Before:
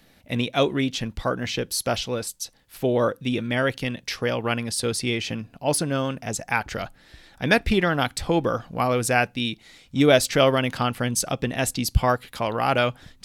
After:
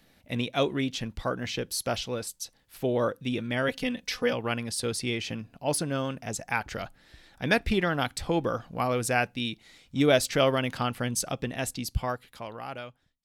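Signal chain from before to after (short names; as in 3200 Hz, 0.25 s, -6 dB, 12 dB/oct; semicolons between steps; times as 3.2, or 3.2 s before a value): ending faded out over 2.08 s; 3.68–4.33 comb 4 ms, depth 89%; gain -5 dB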